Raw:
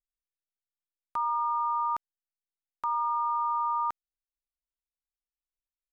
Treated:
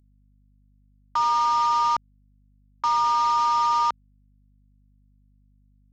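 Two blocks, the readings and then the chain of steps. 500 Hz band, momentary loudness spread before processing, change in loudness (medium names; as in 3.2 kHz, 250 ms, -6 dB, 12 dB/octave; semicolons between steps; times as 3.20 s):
no reading, 8 LU, +7.5 dB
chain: CVSD coder 32 kbps; hum 50 Hz, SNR 34 dB; trim +7.5 dB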